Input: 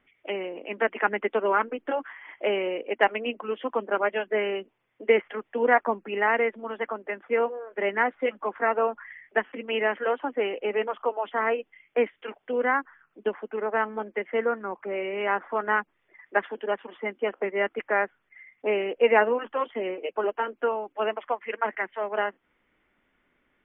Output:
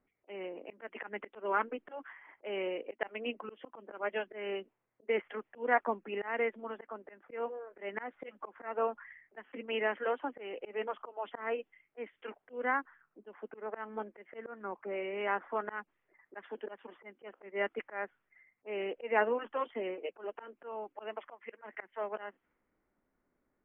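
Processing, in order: low-pass opened by the level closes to 1000 Hz, open at -21 dBFS; auto swell 0.198 s; gain -7 dB

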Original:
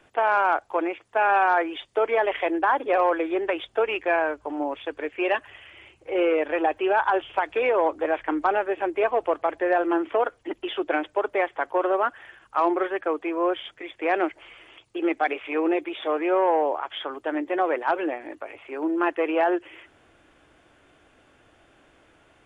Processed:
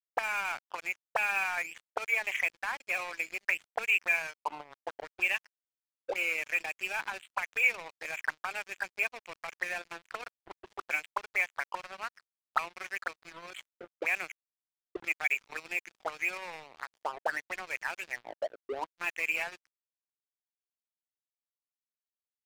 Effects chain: auto-wah 290–2400 Hz, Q 8.1, up, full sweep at -22 dBFS; crossover distortion -51.5 dBFS; sample leveller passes 1; gain +6 dB

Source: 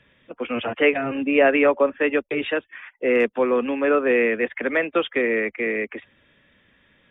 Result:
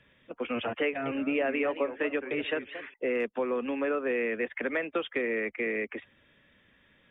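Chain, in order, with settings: compressor 3:1, threshold -24 dBFS, peak gain reduction 9.5 dB; 0.84–2.94 warbling echo 0.222 s, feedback 36%, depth 217 cents, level -11.5 dB; gain -4 dB

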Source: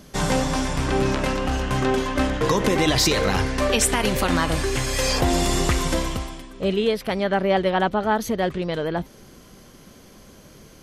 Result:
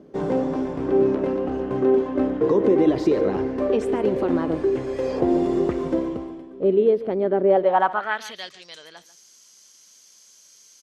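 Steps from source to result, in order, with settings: band-pass sweep 370 Hz -> 6300 Hz, 7.43–8.57; echo 0.142 s -16 dB; gain +7 dB

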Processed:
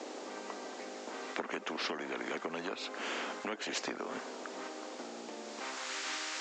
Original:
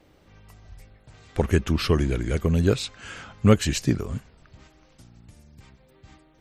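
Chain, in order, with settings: added noise violet -41 dBFS; band-pass sweep 430 Hz -> 1600 Hz, 5.4–5.94; compressor 6:1, threshold -37 dBFS, peak gain reduction 19 dB; Chebyshev band-pass 240–7300 Hz, order 5; spectral compressor 4:1; gain +9.5 dB

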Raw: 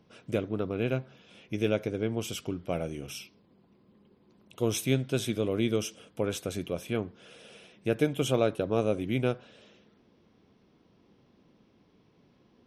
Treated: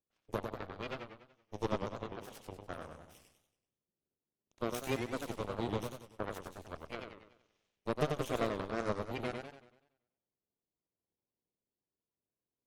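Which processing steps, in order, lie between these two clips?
bin magnitudes rounded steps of 30 dB; added harmonics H 5 -12 dB, 6 -12 dB, 7 -10 dB, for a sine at -12 dBFS; warbling echo 95 ms, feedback 46%, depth 201 cents, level -5 dB; gain -8 dB

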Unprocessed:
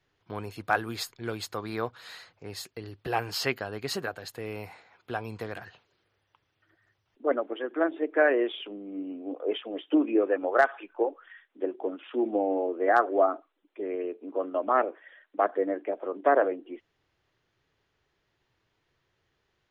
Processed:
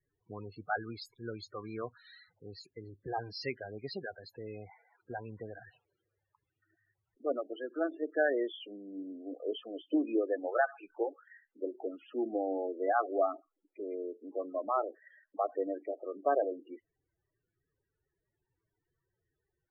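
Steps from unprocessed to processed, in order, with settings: loudest bins only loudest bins 16; gain -6.5 dB

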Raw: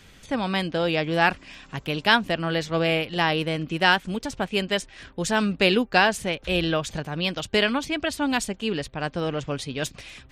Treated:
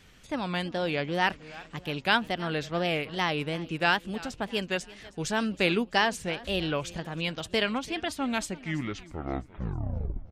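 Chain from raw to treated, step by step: tape stop at the end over 2.07 s; feedback echo 0.329 s, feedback 46%, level -19.5 dB; wow and flutter 140 cents; gain -5.5 dB

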